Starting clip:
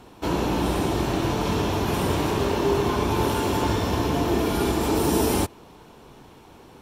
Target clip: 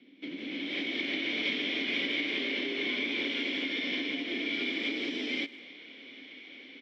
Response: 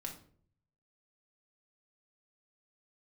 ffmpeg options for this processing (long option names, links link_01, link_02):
-filter_complex "[0:a]asplit=3[link_01][link_02][link_03];[link_01]bandpass=frequency=270:width_type=q:width=8,volume=0dB[link_04];[link_02]bandpass=frequency=2290:width_type=q:width=8,volume=-6dB[link_05];[link_03]bandpass=frequency=3010:width_type=q:width=8,volume=-9dB[link_06];[link_04][link_05][link_06]amix=inputs=3:normalize=0,highpass=frequency=160:width=0.5412,highpass=frequency=160:width=1.3066,equalizer=frequency=550:width_type=q:width=4:gain=7,equalizer=frequency=840:width_type=q:width=4:gain=9,equalizer=frequency=1300:width_type=q:width=4:gain=-3,equalizer=frequency=2100:width_type=q:width=4:gain=10,equalizer=frequency=3500:width_type=q:width=4:gain=7,equalizer=frequency=5100:width_type=q:width=4:gain=4,lowpass=frequency=5500:width=0.5412,lowpass=frequency=5500:width=1.3066,asplit=2[link_07][link_08];[link_08]aecho=0:1:103|206|309:0.075|0.0322|0.0139[link_09];[link_07][link_09]amix=inputs=2:normalize=0,acompressor=threshold=-38dB:ratio=6,asplit=2[link_10][link_11];[link_11]adelay=150,highpass=300,lowpass=3400,asoftclip=type=hard:threshold=-40dB,volume=-24dB[link_12];[link_10][link_12]amix=inputs=2:normalize=0,acrossover=split=510[link_13][link_14];[link_14]dynaudnorm=framelen=160:gausssize=7:maxgain=15.5dB[link_15];[link_13][link_15]amix=inputs=2:normalize=0"